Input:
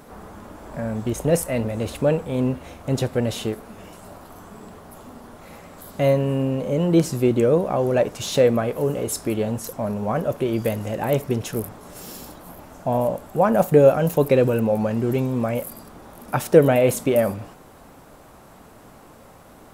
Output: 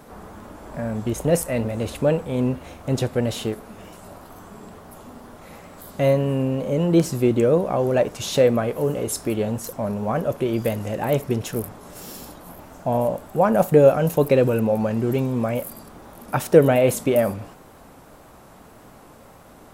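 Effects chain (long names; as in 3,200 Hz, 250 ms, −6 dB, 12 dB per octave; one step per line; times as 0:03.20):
tape wow and flutter 26 cents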